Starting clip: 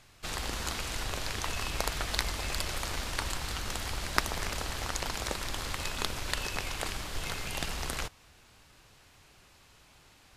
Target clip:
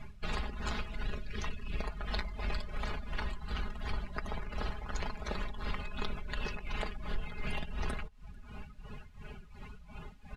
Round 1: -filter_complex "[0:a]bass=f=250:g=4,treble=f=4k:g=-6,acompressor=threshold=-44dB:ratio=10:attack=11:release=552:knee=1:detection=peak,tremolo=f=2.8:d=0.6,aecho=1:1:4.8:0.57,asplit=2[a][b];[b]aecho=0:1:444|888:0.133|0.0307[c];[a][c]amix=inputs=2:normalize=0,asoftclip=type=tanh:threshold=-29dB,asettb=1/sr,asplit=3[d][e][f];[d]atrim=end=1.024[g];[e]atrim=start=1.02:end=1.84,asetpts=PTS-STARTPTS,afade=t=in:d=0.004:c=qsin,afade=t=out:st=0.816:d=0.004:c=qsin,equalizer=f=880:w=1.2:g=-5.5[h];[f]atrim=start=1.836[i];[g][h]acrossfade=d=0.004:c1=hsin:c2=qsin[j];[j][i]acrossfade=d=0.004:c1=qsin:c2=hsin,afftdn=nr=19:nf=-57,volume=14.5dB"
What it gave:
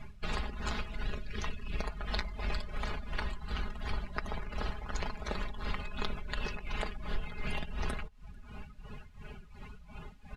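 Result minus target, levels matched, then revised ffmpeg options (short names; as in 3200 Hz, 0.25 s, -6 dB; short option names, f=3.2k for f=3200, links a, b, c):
soft clip: distortion -10 dB
-filter_complex "[0:a]bass=f=250:g=4,treble=f=4k:g=-6,acompressor=threshold=-44dB:ratio=10:attack=11:release=552:knee=1:detection=peak,tremolo=f=2.8:d=0.6,aecho=1:1:4.8:0.57,asplit=2[a][b];[b]aecho=0:1:444|888:0.133|0.0307[c];[a][c]amix=inputs=2:normalize=0,asoftclip=type=tanh:threshold=-36.5dB,asettb=1/sr,asplit=3[d][e][f];[d]atrim=end=1.024[g];[e]atrim=start=1.02:end=1.84,asetpts=PTS-STARTPTS,afade=t=in:d=0.004:c=qsin,afade=t=out:st=0.816:d=0.004:c=qsin,equalizer=f=880:w=1.2:g=-5.5[h];[f]atrim=start=1.836[i];[g][h]acrossfade=d=0.004:c1=hsin:c2=qsin[j];[j][i]acrossfade=d=0.004:c1=qsin:c2=hsin,afftdn=nr=19:nf=-57,volume=14.5dB"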